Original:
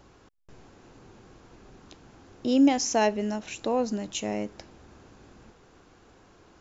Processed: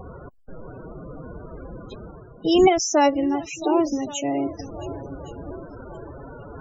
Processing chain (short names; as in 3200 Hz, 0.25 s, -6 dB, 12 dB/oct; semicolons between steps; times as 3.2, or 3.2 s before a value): reverse; upward compressor, threshold -32 dBFS; reverse; swung echo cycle 1.119 s, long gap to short 1.5:1, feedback 40%, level -14.5 dB; formant-preserving pitch shift +5 st; loudest bins only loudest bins 32; gain +6 dB